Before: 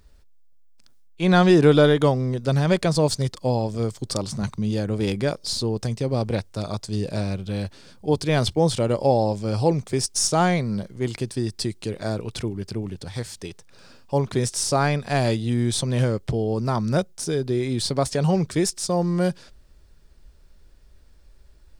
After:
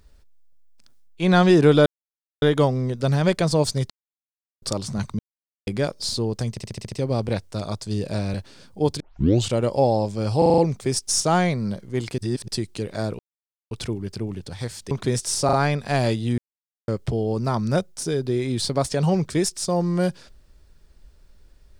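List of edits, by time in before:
1.86 s: insert silence 0.56 s
3.34–4.06 s: mute
4.63–5.11 s: mute
5.94 s: stutter 0.07 s, 7 plays
7.36–7.61 s: delete
8.27 s: tape start 0.51 s
9.65 s: stutter 0.04 s, 6 plays
11.25–11.55 s: reverse
12.26 s: insert silence 0.52 s
13.46–14.20 s: delete
14.74 s: stutter 0.04 s, 3 plays
15.59–16.09 s: mute

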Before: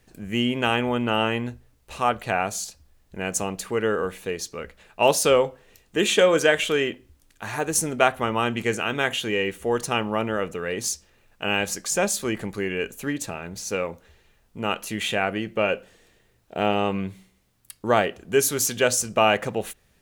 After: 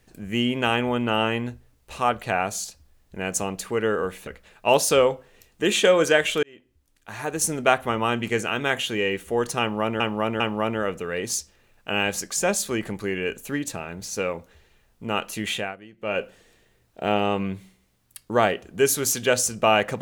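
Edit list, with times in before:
4.27–4.61 s: delete
6.77–7.90 s: fade in
9.94–10.34 s: loop, 3 plays
15.05–15.76 s: dip -17.5 dB, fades 0.25 s

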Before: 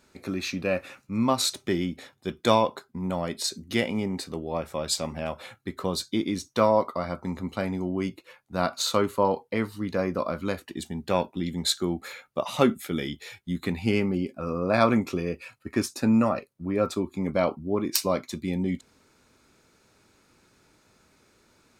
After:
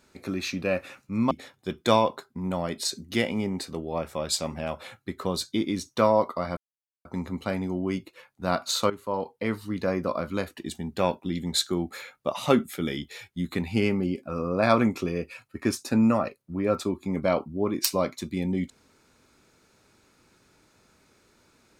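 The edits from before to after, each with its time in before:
1.31–1.90 s: delete
7.16 s: insert silence 0.48 s
9.01–9.68 s: fade in, from -14 dB

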